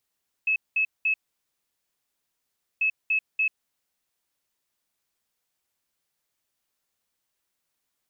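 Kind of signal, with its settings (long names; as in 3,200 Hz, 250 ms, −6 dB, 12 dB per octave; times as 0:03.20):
beeps in groups sine 2,590 Hz, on 0.09 s, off 0.20 s, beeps 3, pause 1.67 s, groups 2, −20 dBFS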